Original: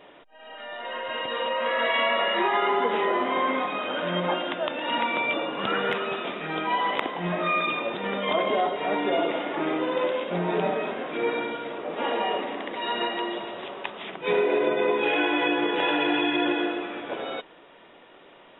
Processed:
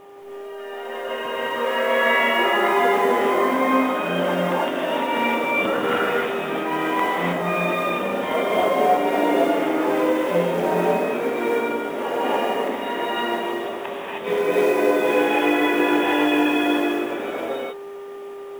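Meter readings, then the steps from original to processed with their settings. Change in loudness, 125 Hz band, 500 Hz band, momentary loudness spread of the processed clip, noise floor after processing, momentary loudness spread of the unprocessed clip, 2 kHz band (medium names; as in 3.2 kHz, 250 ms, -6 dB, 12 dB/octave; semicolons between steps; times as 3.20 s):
+5.0 dB, +5.0 dB, +6.0 dB, 11 LU, -35 dBFS, 10 LU, +4.5 dB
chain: mains buzz 400 Hz, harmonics 3, -46 dBFS -4 dB/octave; distance through air 330 m; companded quantiser 6-bit; gated-style reverb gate 340 ms rising, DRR -6 dB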